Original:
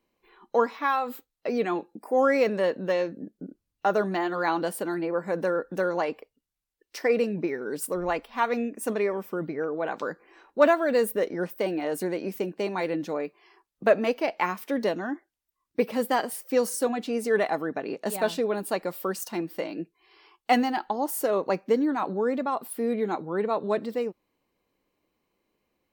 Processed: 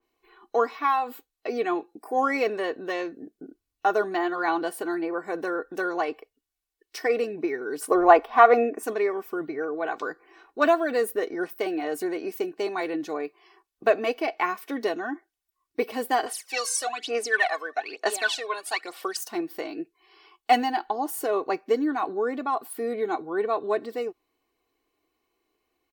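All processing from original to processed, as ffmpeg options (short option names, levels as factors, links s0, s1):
-filter_complex "[0:a]asettb=1/sr,asplit=3[s0][s1][s2];[s0]atrim=end=7.814[s3];[s1]atrim=start=7.81:end=8.83,asetpts=PTS-STARTPTS,afade=t=in:d=0.004:c=qsin,afade=t=out:st=1.016:d=0.004:c=qsin,acrossover=split=9800[s4][s5];[s5]acompressor=threshold=0.00398:ratio=4:attack=1:release=60[s6];[s4][s6]amix=inputs=2:normalize=0,equalizer=f=710:t=o:w=2.6:g=13.5[s7];[s2]atrim=start=8.826[s8];[s3][s7]acrossfade=d=0.004:c1=hsin:c2=qsin[s9];[s9][s8]acrossfade=d=0.004:c1=qsin:c2=hsin,asettb=1/sr,asplit=3[s10][s11][s12];[s10]atrim=end=16.264[s13];[s11]atrim=start=16.26:end=19.17,asetpts=PTS-STARTPTS,afade=t=in:d=0.004:c=qsin,afade=t=out:st=2.906:d=0.004:c=qsin,tiltshelf=f=1300:g=-7.5,aphaser=in_gain=1:out_gain=1:delay=1.9:decay=0.74:speed=1.1:type=sinusoidal,highpass=410,lowpass=7500[s14];[s12]atrim=start=19.166[s15];[s13][s14]acrossfade=d=0.004:c1=hsin:c2=qsin[s16];[s16][s15]acrossfade=d=0.004:c1=qsin:c2=hsin,lowshelf=f=300:g=-6.5,aecho=1:1:2.7:0.69,adynamicequalizer=threshold=0.00891:dfrequency=3100:dqfactor=0.7:tfrequency=3100:tqfactor=0.7:attack=5:release=100:ratio=0.375:range=2.5:mode=cutabove:tftype=highshelf"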